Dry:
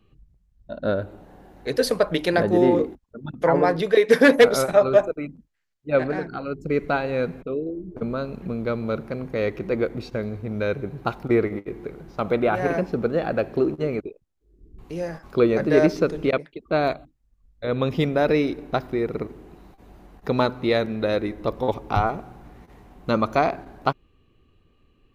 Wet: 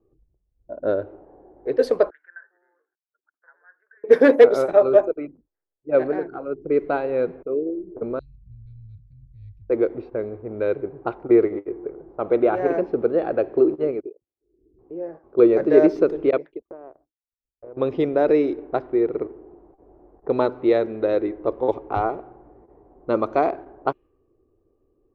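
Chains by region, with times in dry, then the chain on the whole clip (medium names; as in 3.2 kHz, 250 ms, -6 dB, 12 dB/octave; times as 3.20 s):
2.10–4.04 s: compression 1.5:1, threshold -23 dBFS + Butterworth band-pass 1.6 kHz, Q 5.8
8.19–9.70 s: elliptic band-stop 100–4500 Hz, stop band 60 dB + bass shelf 160 Hz +10 dB
13.91–15.39 s: high-pass 140 Hz 6 dB/octave + peaking EQ 1.2 kHz -6 dB 2.8 oct
16.62–17.77 s: low-pass 1.8 kHz + compression 8:1, threshold -31 dBFS + power-law waveshaper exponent 2
whole clip: dynamic bell 210 Hz, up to +4 dB, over -31 dBFS, Q 1.1; level-controlled noise filter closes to 740 Hz, open at -15 dBFS; FFT filter 120 Hz 0 dB, 200 Hz -5 dB, 350 Hz +14 dB, 11 kHz -8 dB; trim -9.5 dB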